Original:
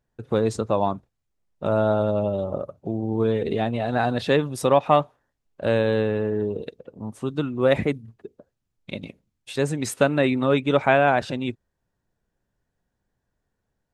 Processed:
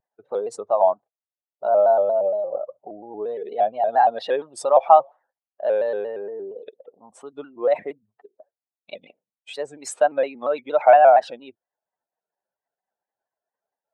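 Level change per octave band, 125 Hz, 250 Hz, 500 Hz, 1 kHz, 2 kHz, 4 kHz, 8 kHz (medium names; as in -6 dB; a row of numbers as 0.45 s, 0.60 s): under -30 dB, -16.5 dB, +2.5 dB, +7.0 dB, -5.5 dB, -8.0 dB, -1.5 dB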